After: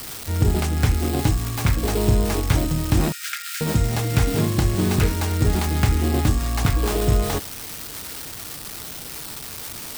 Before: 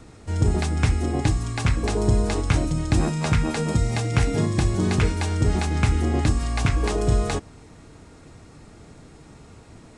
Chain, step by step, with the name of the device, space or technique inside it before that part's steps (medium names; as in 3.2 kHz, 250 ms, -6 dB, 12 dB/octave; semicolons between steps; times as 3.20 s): budget class-D amplifier (dead-time distortion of 0.23 ms; zero-crossing glitches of -15.5 dBFS); 3.12–3.61 s: Chebyshev high-pass 1.3 kHz, order 8; trim +1.5 dB